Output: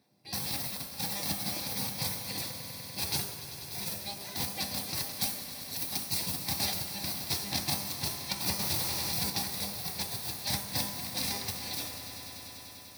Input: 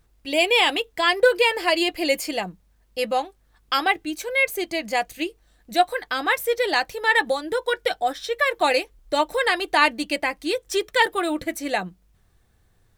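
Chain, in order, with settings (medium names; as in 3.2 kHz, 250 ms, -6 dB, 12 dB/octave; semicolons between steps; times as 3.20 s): dynamic bell 3.1 kHz, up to +3 dB, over -32 dBFS, Q 1.1; integer overflow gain 16.5 dB; feedback comb 200 Hz, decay 0.63 s, harmonics all, mix 80%; spectral gate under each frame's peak -20 dB weak; 5.13–6.20 s: treble shelf 5.2 kHz +7 dB; echo with a slow build-up 98 ms, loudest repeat 5, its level -15.5 dB; reverberation RT60 1.0 s, pre-delay 3 ms, DRR 3.5 dB; 8.59–9.30 s: level flattener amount 70%; trim +5 dB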